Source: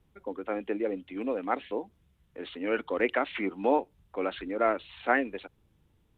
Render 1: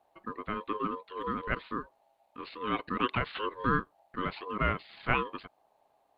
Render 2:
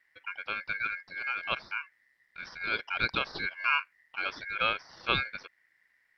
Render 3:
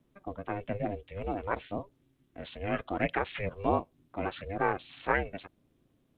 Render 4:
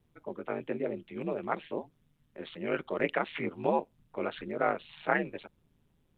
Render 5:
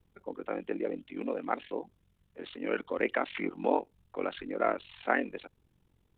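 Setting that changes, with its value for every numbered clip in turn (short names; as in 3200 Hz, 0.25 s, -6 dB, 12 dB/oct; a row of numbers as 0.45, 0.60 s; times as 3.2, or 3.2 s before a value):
ring modulator, frequency: 740, 1900, 200, 78, 22 Hz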